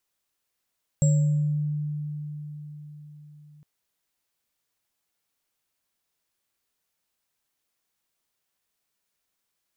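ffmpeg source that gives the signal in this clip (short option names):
-f lavfi -i "aevalsrc='0.158*pow(10,-3*t/4.71)*sin(2*PI*149*t)+0.0316*pow(10,-3*t/1)*sin(2*PI*555*t)+0.0447*pow(10,-3*t/0.6)*sin(2*PI*7600*t)':d=2.61:s=44100"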